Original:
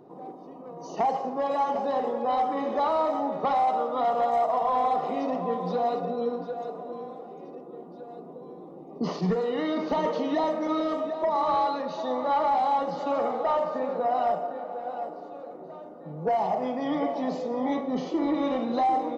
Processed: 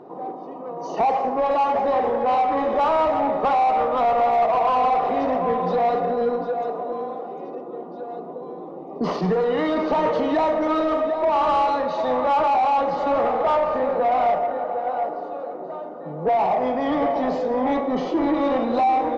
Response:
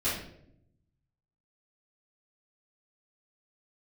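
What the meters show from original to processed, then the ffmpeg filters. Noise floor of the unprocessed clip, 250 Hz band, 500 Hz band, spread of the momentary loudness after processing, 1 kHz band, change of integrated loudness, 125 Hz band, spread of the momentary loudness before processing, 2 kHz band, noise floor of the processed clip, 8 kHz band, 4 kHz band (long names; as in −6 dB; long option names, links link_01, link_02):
−44 dBFS, +4.0 dB, +6.5 dB, 15 LU, +6.0 dB, +6.0 dB, +3.5 dB, 18 LU, +8.5 dB, −35 dBFS, can't be measured, +4.0 dB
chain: -filter_complex "[0:a]asplit=2[link_01][link_02];[link_02]highpass=frequency=720:poles=1,volume=14dB,asoftclip=type=tanh:threshold=-18dB[link_03];[link_01][link_03]amix=inputs=2:normalize=0,lowpass=frequency=1400:poles=1,volume=-6dB,asplit=2[link_04][link_05];[1:a]atrim=start_sample=2205,adelay=107[link_06];[link_05][link_06]afir=irnorm=-1:irlink=0,volume=-27dB[link_07];[link_04][link_07]amix=inputs=2:normalize=0,volume=5dB"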